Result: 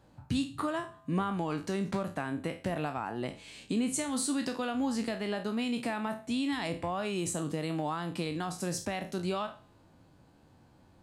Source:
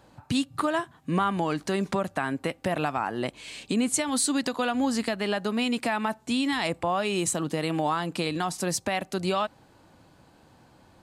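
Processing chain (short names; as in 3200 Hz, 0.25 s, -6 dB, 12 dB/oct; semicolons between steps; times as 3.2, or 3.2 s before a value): spectral trails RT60 0.33 s; low shelf 370 Hz +7 dB; resonator 94 Hz, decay 0.99 s, harmonics odd, mix 40%; gain -5.5 dB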